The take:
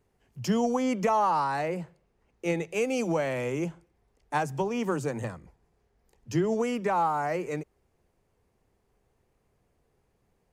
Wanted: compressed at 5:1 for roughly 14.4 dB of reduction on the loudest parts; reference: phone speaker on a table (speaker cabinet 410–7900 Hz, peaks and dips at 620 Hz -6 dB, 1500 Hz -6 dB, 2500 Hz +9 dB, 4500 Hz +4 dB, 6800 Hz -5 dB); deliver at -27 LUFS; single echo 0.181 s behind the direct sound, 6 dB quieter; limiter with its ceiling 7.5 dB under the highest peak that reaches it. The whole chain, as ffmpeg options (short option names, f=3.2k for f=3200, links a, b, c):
-af "acompressor=threshold=-38dB:ratio=5,alimiter=level_in=10dB:limit=-24dB:level=0:latency=1,volume=-10dB,highpass=f=410:w=0.5412,highpass=f=410:w=1.3066,equalizer=f=620:t=q:w=4:g=-6,equalizer=f=1.5k:t=q:w=4:g=-6,equalizer=f=2.5k:t=q:w=4:g=9,equalizer=f=4.5k:t=q:w=4:g=4,equalizer=f=6.8k:t=q:w=4:g=-5,lowpass=f=7.9k:w=0.5412,lowpass=f=7.9k:w=1.3066,aecho=1:1:181:0.501,volume=17.5dB"